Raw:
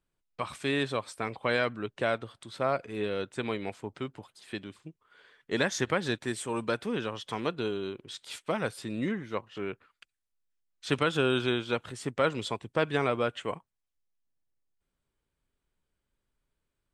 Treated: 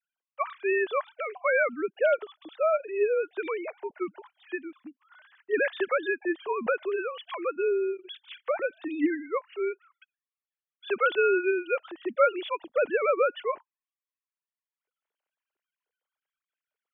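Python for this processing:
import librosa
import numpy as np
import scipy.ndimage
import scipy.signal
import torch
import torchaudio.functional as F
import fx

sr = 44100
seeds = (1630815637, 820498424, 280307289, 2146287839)

y = fx.sine_speech(x, sr)
y = y * librosa.db_to_amplitude(3.5)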